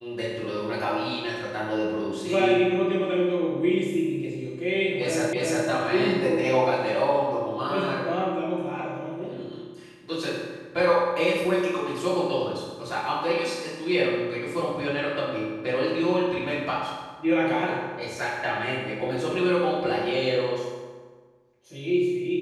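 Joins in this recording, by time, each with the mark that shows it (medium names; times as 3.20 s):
5.33 s: repeat of the last 0.35 s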